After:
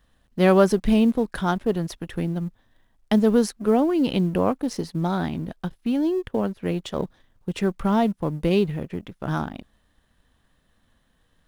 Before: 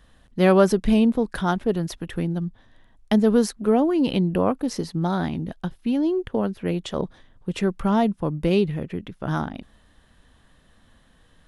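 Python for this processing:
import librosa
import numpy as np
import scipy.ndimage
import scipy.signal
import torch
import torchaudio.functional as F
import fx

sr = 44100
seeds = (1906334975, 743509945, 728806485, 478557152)

y = fx.law_mismatch(x, sr, coded='A')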